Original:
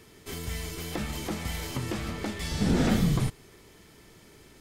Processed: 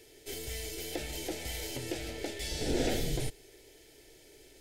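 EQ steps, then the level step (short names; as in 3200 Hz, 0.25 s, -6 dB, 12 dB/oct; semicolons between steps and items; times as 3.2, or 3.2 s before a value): bell 84 Hz -9 dB 1.1 oct; fixed phaser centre 470 Hz, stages 4; 0.0 dB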